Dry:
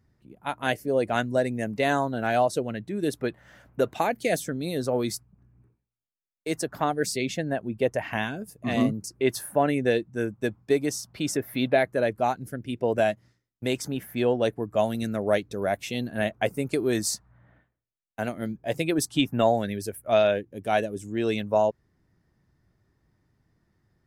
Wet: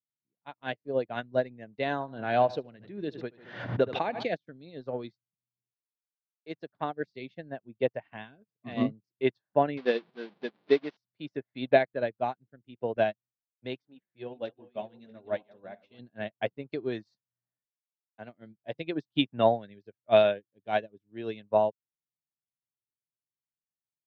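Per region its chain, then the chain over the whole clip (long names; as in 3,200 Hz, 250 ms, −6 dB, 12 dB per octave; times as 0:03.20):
0:01.93–0:04.28: repeating echo 74 ms, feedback 48%, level −18 dB + background raised ahead of every attack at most 32 dB per second
0:09.77–0:10.97: linear delta modulator 32 kbit/s, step −27.5 dBFS + linear-phase brick-wall high-pass 150 Hz
0:13.83–0:15.99: feedback delay that plays each chunk backwards 319 ms, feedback 50%, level −10 dB + hum removal 176.6 Hz, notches 9 + flanger 1.4 Hz, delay 2.4 ms, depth 3.9 ms, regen −28%
whole clip: elliptic band-pass filter 110–4,000 Hz, stop band 40 dB; notch filter 1,300 Hz, Q 21; expander for the loud parts 2.5 to 1, over −45 dBFS; level +2.5 dB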